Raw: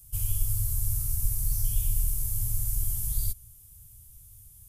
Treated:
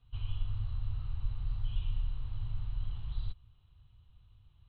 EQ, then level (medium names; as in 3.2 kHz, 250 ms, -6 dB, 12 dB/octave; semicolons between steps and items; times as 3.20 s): rippled Chebyshev low-pass 4.1 kHz, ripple 9 dB; +3.0 dB